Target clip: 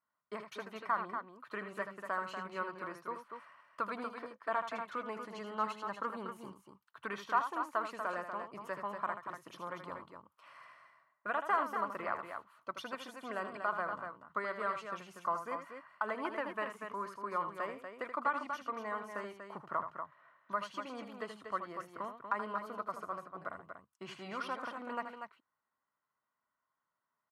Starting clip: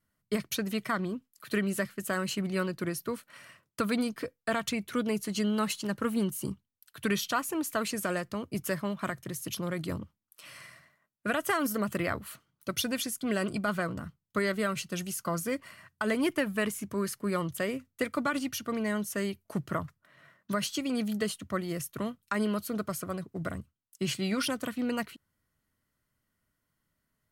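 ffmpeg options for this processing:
ffmpeg -i in.wav -filter_complex "[0:a]bandpass=frequency=1000:width_type=q:width=3.1:csg=0,asplit=2[link_01][link_02];[link_02]aecho=0:1:78.72|239.1:0.355|0.447[link_03];[link_01][link_03]amix=inputs=2:normalize=0,volume=3.5dB" out.wav

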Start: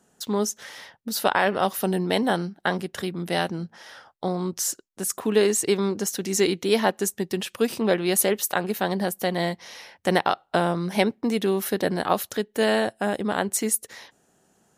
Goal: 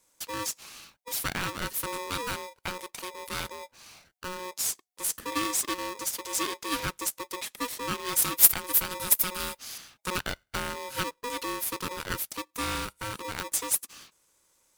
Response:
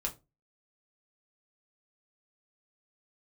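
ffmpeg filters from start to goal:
-filter_complex "[0:a]aexciter=amount=1.1:drive=10:freq=2400,asettb=1/sr,asplit=3[link_01][link_02][link_03];[link_01]atrim=end=8.224[link_04];[link_02]atrim=start=8.22:end=9.78,asetpts=PTS-STARTPTS,afade=type=in:duration=0.004:curve=qsin,afade=type=out:start_time=1.556:duration=0.004:curve=qsin,aemphasis=mode=production:type=50fm[link_05];[link_03]atrim=start=9.776[link_06];[link_04][link_05]acrossfade=duration=0.004:curve1=hsin:curve2=qsin[link_07];[link_07][link_06]acrossfade=duration=0.004:curve1=qsin:curve2=hsin,aeval=exprs='val(0)*sgn(sin(2*PI*730*n/s))':channel_layout=same,volume=-11dB"

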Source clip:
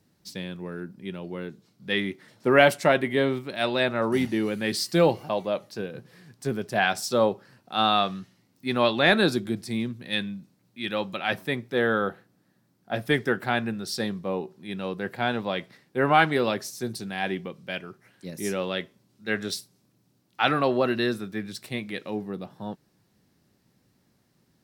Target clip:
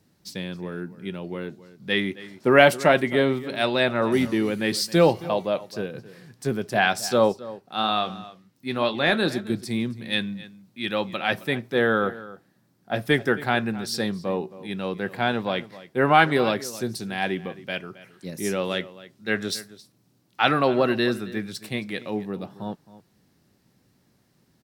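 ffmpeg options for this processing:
ffmpeg -i in.wav -filter_complex "[0:a]asettb=1/sr,asplit=3[link_01][link_02][link_03];[link_01]atrim=end=7.324[link_04];[link_02]atrim=start=7.32:end=9.5,asetpts=PTS-STARTPTS,afade=type=in:duration=0.004:curve=qsin,afade=type=out:start_time=2.176:duration=0.004:curve=qsin,flanger=delay=4.2:depth=4.5:regen=-75:speed=1.9:shape=triangular[link_05];[link_03]atrim=start=9.496[link_06];[link_04][link_05]acrossfade=duration=0.004:curve1=hsin:curve2=qsin[link_07];[link_07][link_06]acrossfade=duration=0.004:curve1=qsin:curve2=hsin,asplit=2[link_08][link_09];[link_09]adelay=268.2,volume=-17dB,highshelf=frequency=4000:gain=-6.04[link_10];[link_08][link_10]amix=inputs=2:normalize=0,volume=2.5dB" out.wav

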